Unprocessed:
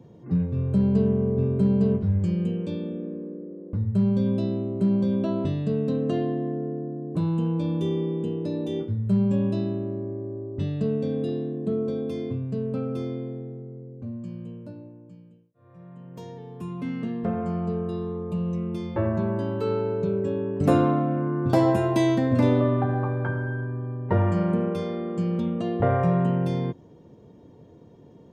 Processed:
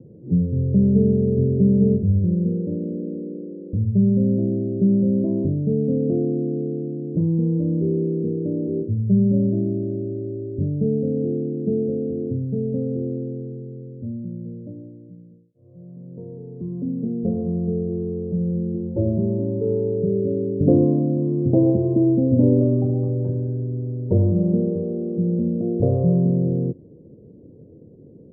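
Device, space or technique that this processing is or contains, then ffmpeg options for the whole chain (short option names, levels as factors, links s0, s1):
under water: -af "lowpass=f=430:w=0.5412,lowpass=f=430:w=1.3066,equalizer=f=540:t=o:w=0.49:g=7,volume=1.68"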